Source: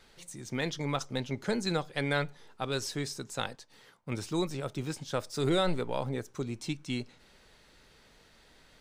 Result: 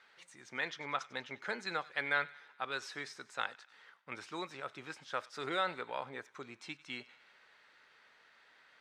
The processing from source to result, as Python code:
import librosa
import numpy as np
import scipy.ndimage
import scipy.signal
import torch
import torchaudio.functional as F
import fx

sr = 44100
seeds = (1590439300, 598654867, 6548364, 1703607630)

y = fx.bandpass_q(x, sr, hz=1600.0, q=1.3)
y = fx.echo_wet_highpass(y, sr, ms=96, feedback_pct=55, hz=1500.0, wet_db=-18.0)
y = y * 10.0 ** (2.0 / 20.0)